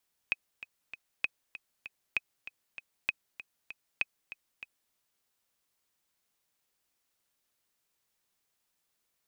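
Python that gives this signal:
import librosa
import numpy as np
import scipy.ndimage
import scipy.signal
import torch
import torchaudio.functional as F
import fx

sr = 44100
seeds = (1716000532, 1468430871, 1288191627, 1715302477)

y = fx.click_track(sr, bpm=195, beats=3, bars=5, hz=2530.0, accent_db=14.5, level_db=-14.5)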